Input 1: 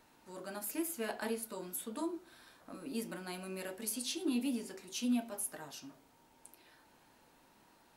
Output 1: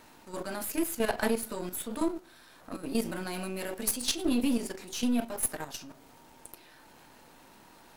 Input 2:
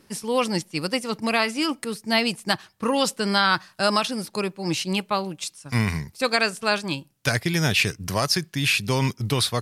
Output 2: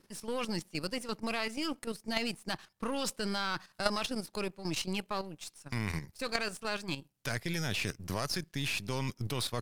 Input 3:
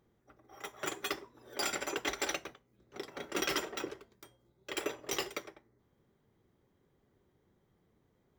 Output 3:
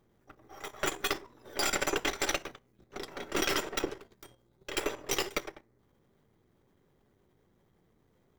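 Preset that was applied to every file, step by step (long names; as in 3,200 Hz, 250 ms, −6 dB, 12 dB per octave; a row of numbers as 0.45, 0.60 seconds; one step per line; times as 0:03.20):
gain on one half-wave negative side −7 dB
output level in coarse steps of 10 dB
normalise the peak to −12 dBFS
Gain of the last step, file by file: +14.5, −3.5, +11.0 decibels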